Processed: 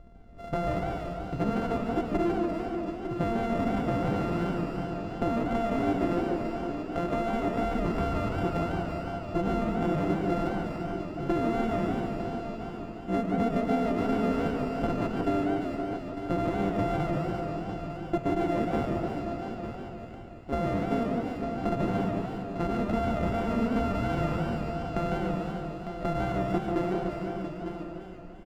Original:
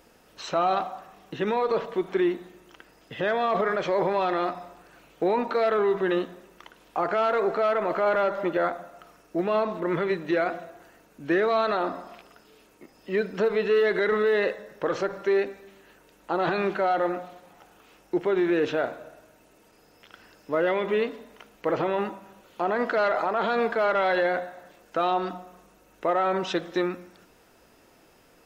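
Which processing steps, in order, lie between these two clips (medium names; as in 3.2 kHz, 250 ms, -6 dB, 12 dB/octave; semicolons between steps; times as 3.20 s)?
sorted samples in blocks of 64 samples; treble shelf 3.9 kHz -7 dB; echo whose repeats swap between lows and highs 170 ms, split 1.8 kHz, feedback 70%, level -7 dB; compression, threshold -26 dBFS, peak gain reduction 7.5 dB; tilt EQ -4.5 dB/octave; delay 902 ms -9.5 dB; modulated delay 146 ms, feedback 62%, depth 214 cents, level -7 dB; trim -3.5 dB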